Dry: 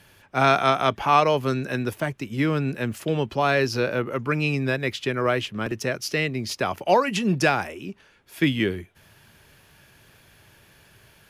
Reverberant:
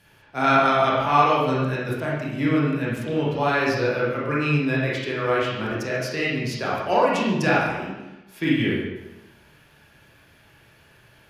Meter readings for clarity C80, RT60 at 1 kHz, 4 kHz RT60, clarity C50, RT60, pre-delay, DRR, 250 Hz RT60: 3.0 dB, 1.0 s, 0.85 s, −1.0 dB, 1.0 s, 23 ms, −6.0 dB, 1.0 s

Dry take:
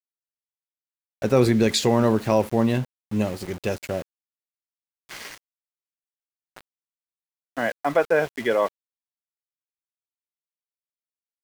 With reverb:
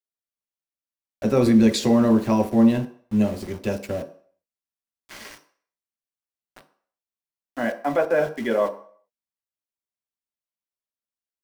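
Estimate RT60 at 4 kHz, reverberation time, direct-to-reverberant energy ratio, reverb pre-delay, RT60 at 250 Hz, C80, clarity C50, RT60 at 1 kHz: 0.50 s, 0.50 s, 4.0 dB, 3 ms, 0.40 s, 16.5 dB, 13.5 dB, 0.50 s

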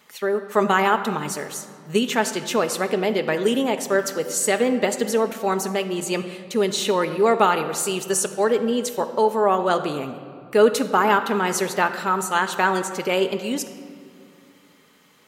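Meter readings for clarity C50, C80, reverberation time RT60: 10.5 dB, 11.5 dB, 2.3 s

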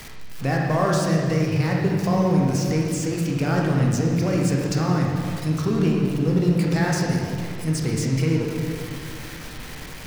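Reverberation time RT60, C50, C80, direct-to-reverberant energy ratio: 2.1 s, 0.5 dB, 2.0 dB, −2.0 dB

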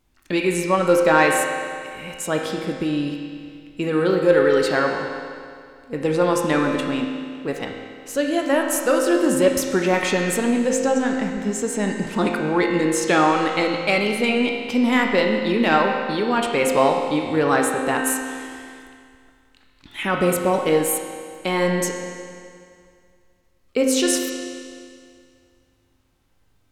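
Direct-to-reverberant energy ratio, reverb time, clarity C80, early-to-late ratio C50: 0.5 dB, 2.2 s, 3.5 dB, 2.5 dB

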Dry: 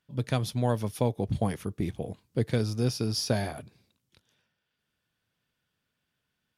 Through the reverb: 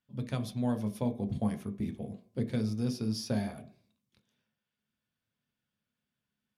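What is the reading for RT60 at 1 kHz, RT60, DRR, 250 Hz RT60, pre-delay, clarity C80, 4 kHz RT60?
0.55 s, 0.50 s, 6.0 dB, 0.40 s, 3 ms, 19.0 dB, 0.45 s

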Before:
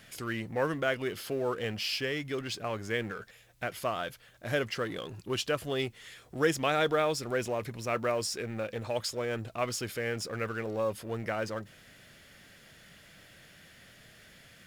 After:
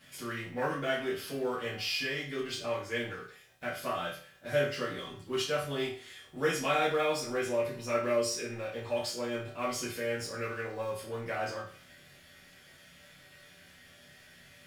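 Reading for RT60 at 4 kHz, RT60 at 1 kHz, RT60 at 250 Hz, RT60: 0.45 s, 0.45 s, 0.45 s, 0.45 s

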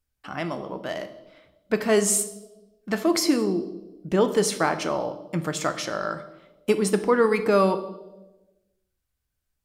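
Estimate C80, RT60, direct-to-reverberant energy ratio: 15.0 dB, 1.1 s, 9.0 dB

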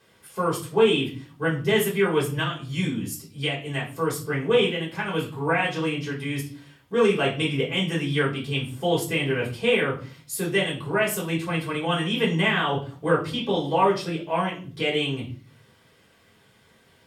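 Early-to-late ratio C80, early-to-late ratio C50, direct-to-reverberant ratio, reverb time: 14.5 dB, 9.0 dB, −5.5 dB, 0.40 s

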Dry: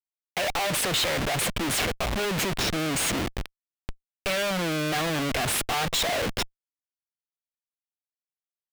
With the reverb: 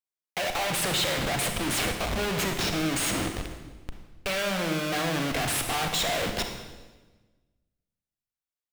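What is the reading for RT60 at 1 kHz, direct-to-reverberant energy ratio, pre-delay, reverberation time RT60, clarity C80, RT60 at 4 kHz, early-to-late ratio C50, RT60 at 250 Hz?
1.2 s, 4.5 dB, 31 ms, 1.3 s, 8.0 dB, 1.1 s, 6.0 dB, 1.6 s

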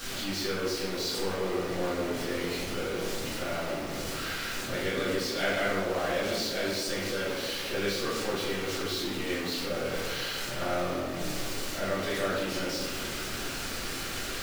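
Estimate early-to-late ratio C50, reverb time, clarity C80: −0.5 dB, 1.9 s, 2.5 dB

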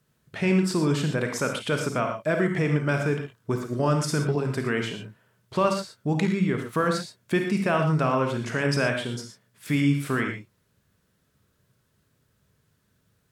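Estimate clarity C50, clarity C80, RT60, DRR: 4.5 dB, 8.0 dB, non-exponential decay, 3.5 dB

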